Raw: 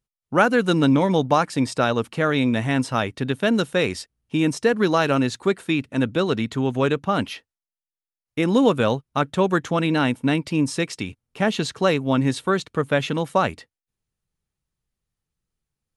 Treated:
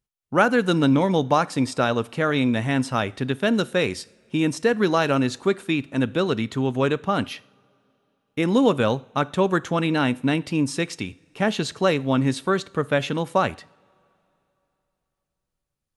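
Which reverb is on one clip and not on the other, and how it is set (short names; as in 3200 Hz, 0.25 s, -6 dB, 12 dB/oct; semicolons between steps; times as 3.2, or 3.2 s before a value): two-slope reverb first 0.52 s, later 3.2 s, from -21 dB, DRR 18 dB; gain -1 dB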